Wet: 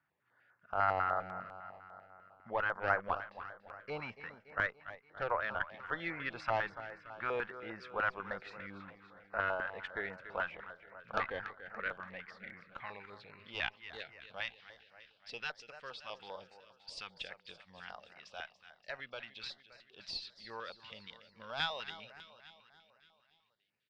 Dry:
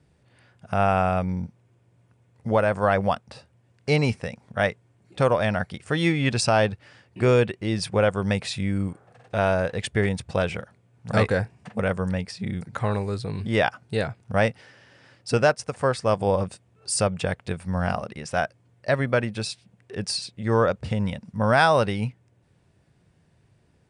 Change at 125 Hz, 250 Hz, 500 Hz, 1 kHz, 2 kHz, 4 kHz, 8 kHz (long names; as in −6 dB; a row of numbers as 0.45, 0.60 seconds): −28.0 dB, −25.5 dB, −19.0 dB, −11.5 dB, −9.5 dB, −12.0 dB, below −25 dB